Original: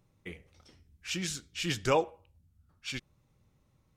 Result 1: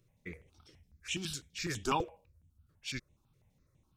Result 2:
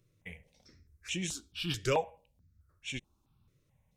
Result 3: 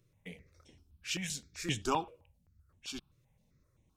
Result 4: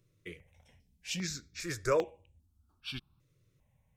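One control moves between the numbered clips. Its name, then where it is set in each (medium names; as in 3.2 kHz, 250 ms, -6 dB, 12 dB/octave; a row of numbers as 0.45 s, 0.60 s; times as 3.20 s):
stepped phaser, rate: 12 Hz, 4.6 Hz, 7.7 Hz, 2.5 Hz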